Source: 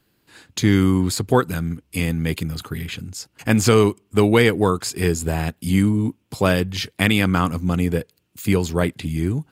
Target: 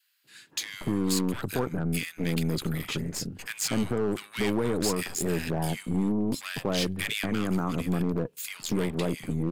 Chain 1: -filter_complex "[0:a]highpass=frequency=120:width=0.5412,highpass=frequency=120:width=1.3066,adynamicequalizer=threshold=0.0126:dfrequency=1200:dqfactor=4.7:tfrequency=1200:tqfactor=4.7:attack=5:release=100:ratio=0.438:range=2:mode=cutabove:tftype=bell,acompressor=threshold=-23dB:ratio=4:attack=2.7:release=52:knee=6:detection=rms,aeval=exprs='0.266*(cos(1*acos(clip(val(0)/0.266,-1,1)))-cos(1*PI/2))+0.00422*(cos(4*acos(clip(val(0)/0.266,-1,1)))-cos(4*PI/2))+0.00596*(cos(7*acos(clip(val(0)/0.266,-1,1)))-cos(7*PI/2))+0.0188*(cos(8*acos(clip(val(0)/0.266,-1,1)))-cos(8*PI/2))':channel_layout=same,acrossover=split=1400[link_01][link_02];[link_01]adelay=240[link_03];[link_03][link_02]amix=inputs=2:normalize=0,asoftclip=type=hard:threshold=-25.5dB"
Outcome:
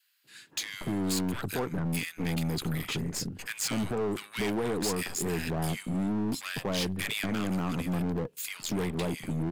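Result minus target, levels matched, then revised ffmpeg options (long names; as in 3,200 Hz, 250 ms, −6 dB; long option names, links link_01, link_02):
hard clipping: distortion +10 dB
-filter_complex "[0:a]highpass=frequency=120:width=0.5412,highpass=frequency=120:width=1.3066,adynamicequalizer=threshold=0.0126:dfrequency=1200:dqfactor=4.7:tfrequency=1200:tqfactor=4.7:attack=5:release=100:ratio=0.438:range=2:mode=cutabove:tftype=bell,acompressor=threshold=-23dB:ratio=4:attack=2.7:release=52:knee=6:detection=rms,aeval=exprs='0.266*(cos(1*acos(clip(val(0)/0.266,-1,1)))-cos(1*PI/2))+0.00422*(cos(4*acos(clip(val(0)/0.266,-1,1)))-cos(4*PI/2))+0.00596*(cos(7*acos(clip(val(0)/0.266,-1,1)))-cos(7*PI/2))+0.0188*(cos(8*acos(clip(val(0)/0.266,-1,1)))-cos(8*PI/2))':channel_layout=same,acrossover=split=1400[link_01][link_02];[link_01]adelay=240[link_03];[link_03][link_02]amix=inputs=2:normalize=0,asoftclip=type=hard:threshold=-19dB"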